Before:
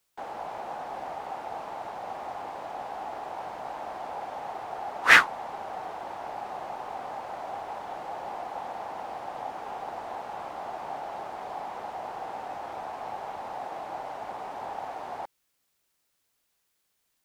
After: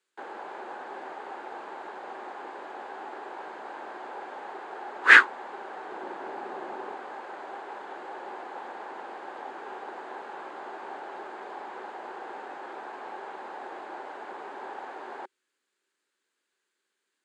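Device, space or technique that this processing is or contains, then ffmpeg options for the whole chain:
television speaker: -filter_complex "[0:a]highpass=frequency=230:width=0.5412,highpass=frequency=230:width=1.3066,equalizer=frequency=380:width_type=q:width=4:gain=10,equalizer=frequency=690:width_type=q:width=4:gain=-7,equalizer=frequency=1600:width_type=q:width=4:gain=8,equalizer=frequency=5600:width_type=q:width=4:gain=-9,lowpass=frequency=8200:width=0.5412,lowpass=frequency=8200:width=1.3066,asettb=1/sr,asplit=3[link_01][link_02][link_03];[link_01]atrim=end=5.924[link_04];[link_02]atrim=start=5.92:end=6.95,asetpts=PTS-STARTPTS,afade=type=in:duration=0.004:curve=qsin,afade=type=out:start_time=1.026:duration=0.004:curve=qsin,lowshelf=frequency=440:gain=8.5[link_05];[link_03]atrim=start=6.946[link_06];[link_04][link_05]acrossfade=duration=0.004:curve1=hsin:curve2=qsin[link_07];[link_07][link_06]acrossfade=duration=0.004:curve1=qsin:curve2=hsin,volume=-2dB"

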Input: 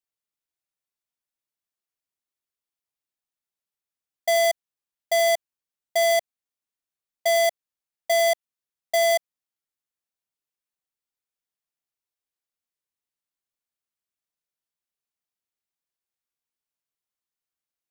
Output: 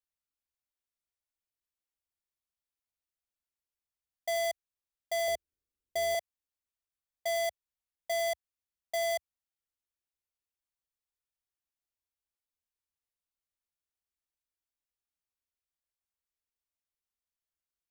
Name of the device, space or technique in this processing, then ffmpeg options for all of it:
car stereo with a boomy subwoofer: -filter_complex "[0:a]lowshelf=frequency=100:width_type=q:width=1.5:gain=10,alimiter=limit=-23dB:level=0:latency=1,asettb=1/sr,asplit=3[link_01][link_02][link_03];[link_01]atrim=end=5.284[link_04];[link_02]atrim=start=5.28:end=6.15,asetpts=PTS-STARTPTS,afade=type=in:duration=0.004:curve=qsin,afade=type=out:start_time=0.866:duration=0.004:curve=qsin,lowshelf=frequency=570:width_type=q:width=1.5:gain=9.5[link_05];[link_03]atrim=start=6.146[link_06];[link_04][link_05]acrossfade=duration=0.004:curve1=hsin:curve2=qsin[link_07];[link_07][link_06]acrossfade=duration=0.004:curve1=qsin:curve2=hsin,volume=-6dB"

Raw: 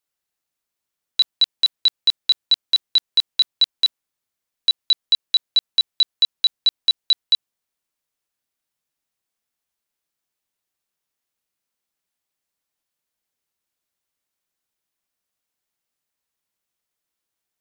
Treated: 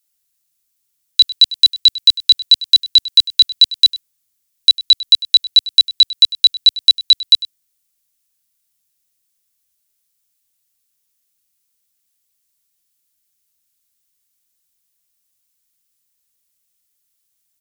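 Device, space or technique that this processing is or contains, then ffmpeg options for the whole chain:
smiley-face EQ: -af "lowshelf=frequency=150:gain=8.5,equalizer=frequency=640:width_type=o:width=2.3:gain=-7,highshelf=frequency=3200:gain=10.5,highshelf=frequency=6100:gain=4.5,aecho=1:1:100:0.133,volume=1dB"

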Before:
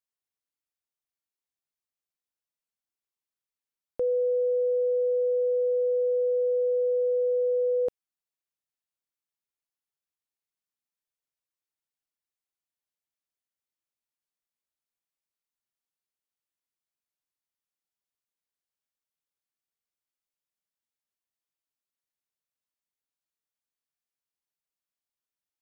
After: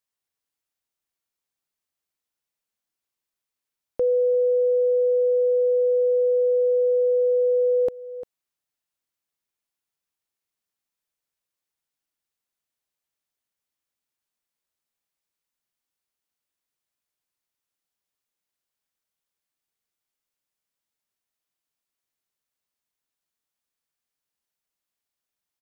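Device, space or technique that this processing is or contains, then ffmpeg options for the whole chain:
ducked delay: -filter_complex "[0:a]asplit=3[link_01][link_02][link_03];[link_02]adelay=349,volume=-8.5dB[link_04];[link_03]apad=whole_len=1144885[link_05];[link_04][link_05]sidechaincompress=threshold=-38dB:ratio=4:attack=16:release=597[link_06];[link_01][link_06]amix=inputs=2:normalize=0,volume=5dB"

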